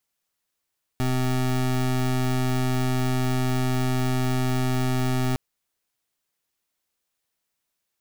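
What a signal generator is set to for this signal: pulse 128 Hz, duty 25% -23 dBFS 4.36 s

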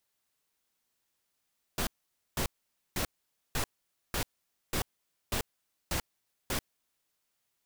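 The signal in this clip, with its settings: noise bursts pink, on 0.09 s, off 0.50 s, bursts 9, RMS -31 dBFS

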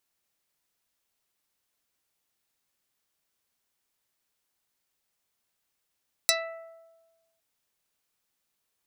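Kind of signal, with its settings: plucked string E5, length 1.11 s, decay 1.29 s, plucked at 0.4, dark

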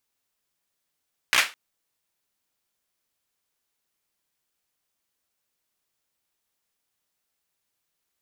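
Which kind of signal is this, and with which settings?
hand clap length 0.21 s, apart 16 ms, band 2000 Hz, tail 0.26 s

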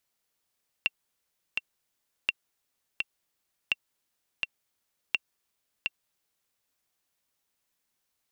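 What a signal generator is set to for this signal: metronome 84 bpm, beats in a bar 2, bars 4, 2730 Hz, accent 4 dB -11 dBFS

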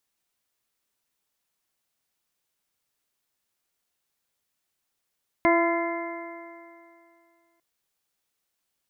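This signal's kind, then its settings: stretched partials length 2.15 s, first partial 336 Hz, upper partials -0.5/-3/-14/-12.5/-3.5 dB, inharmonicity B 0.0021, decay 2.46 s, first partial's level -20 dB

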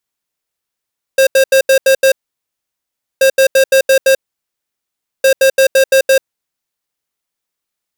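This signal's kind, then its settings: beep pattern square 534 Hz, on 0.09 s, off 0.08 s, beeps 6, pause 1.09 s, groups 3, -8 dBFS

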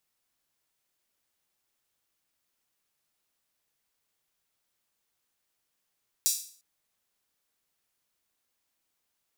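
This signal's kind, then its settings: open hi-hat length 0.35 s, high-pass 5600 Hz, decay 0.47 s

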